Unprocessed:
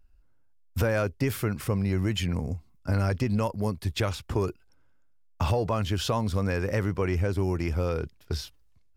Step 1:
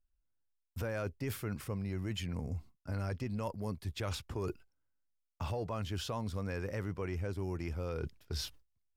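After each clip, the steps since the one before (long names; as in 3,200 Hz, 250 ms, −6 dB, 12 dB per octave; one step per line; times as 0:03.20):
noise gate with hold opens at −47 dBFS
reversed playback
downward compressor 5 to 1, threshold −37 dBFS, peak gain reduction 14.5 dB
reversed playback
level +1 dB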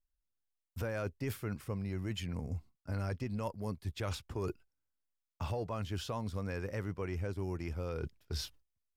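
expander for the loud parts 1.5 to 1, over −48 dBFS
level +1 dB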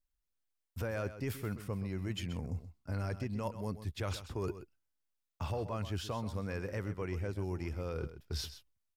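single-tap delay 129 ms −12.5 dB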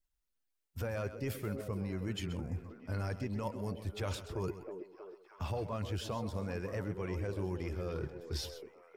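spectral magnitudes quantised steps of 15 dB
echo through a band-pass that steps 318 ms, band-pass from 340 Hz, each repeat 0.7 octaves, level −5.5 dB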